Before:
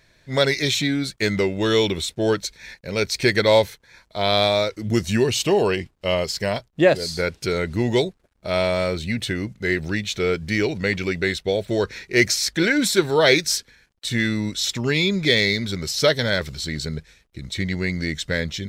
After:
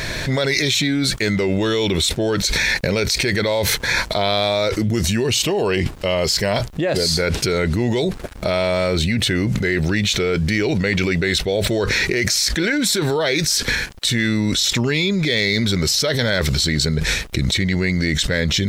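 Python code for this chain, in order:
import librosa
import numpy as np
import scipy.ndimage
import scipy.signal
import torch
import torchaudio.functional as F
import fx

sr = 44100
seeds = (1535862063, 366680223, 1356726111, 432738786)

y = fx.env_flatten(x, sr, amount_pct=100)
y = F.gain(torch.from_numpy(y), -7.5).numpy()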